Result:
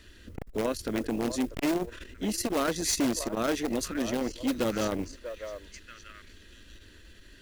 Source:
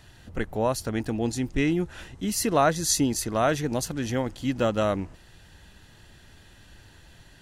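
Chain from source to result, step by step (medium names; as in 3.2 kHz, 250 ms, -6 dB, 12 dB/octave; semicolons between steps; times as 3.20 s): treble shelf 5.6 kHz -8 dB; static phaser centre 330 Hz, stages 4; repeats whose band climbs or falls 638 ms, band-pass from 740 Hz, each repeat 1.4 oct, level -7.5 dB; in parallel at -7 dB: integer overflow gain 21.5 dB; on the sum: modulation noise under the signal 27 dB; transformer saturation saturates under 540 Hz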